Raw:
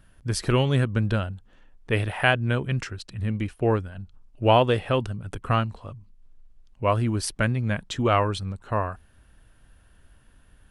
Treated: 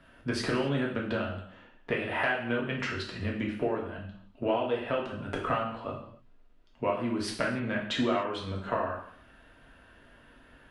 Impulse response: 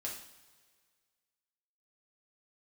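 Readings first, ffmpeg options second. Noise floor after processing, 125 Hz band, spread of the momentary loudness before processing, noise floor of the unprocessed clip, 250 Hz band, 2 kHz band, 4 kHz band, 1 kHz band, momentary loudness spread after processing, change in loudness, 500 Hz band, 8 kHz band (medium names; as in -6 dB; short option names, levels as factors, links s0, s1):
-58 dBFS, -13.5 dB, 14 LU, -57 dBFS, -3.5 dB, -4.0 dB, -5.5 dB, -7.0 dB, 11 LU, -6.5 dB, -5.0 dB, -10.0 dB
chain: -filter_complex "[0:a]acrossover=split=180 4000:gain=0.178 1 0.141[s0][s1][s2];[s0][s1][s2]amix=inputs=3:normalize=0,acompressor=threshold=0.0224:ratio=12[s3];[1:a]atrim=start_sample=2205,afade=t=out:st=0.35:d=0.01,atrim=end_sample=15876[s4];[s3][s4]afir=irnorm=-1:irlink=0,volume=2.66"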